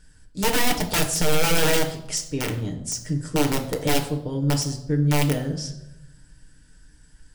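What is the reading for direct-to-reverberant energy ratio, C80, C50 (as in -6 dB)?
1.5 dB, 13.0 dB, 10.5 dB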